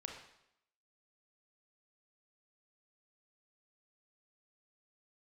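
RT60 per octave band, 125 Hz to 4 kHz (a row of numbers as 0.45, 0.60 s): 0.70, 0.75, 0.80, 0.80, 0.75, 0.75 s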